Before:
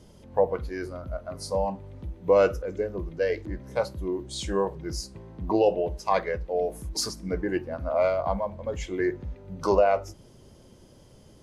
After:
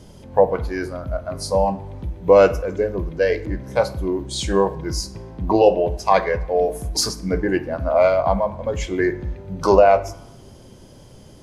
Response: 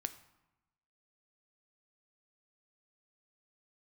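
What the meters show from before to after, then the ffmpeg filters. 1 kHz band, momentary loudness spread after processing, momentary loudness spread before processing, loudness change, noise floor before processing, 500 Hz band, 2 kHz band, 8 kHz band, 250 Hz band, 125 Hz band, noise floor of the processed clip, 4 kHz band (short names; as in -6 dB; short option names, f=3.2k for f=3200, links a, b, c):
+8.5 dB, 13 LU, 13 LU, +8.0 dB, -53 dBFS, +7.5 dB, +8.0 dB, +8.0 dB, +7.5 dB, +8.5 dB, -45 dBFS, +8.0 dB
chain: -filter_complex "[0:a]asplit=2[a][b];[1:a]atrim=start_sample=2205[c];[b][c]afir=irnorm=-1:irlink=0,volume=7.5dB[d];[a][d]amix=inputs=2:normalize=0,volume=-1.5dB"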